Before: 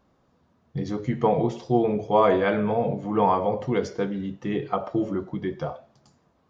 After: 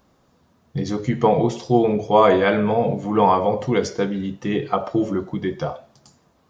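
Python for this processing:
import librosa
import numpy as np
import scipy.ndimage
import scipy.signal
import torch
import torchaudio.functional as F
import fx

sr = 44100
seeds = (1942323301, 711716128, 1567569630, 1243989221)

y = fx.high_shelf(x, sr, hz=4400.0, db=10.0)
y = F.gain(torch.from_numpy(y), 4.5).numpy()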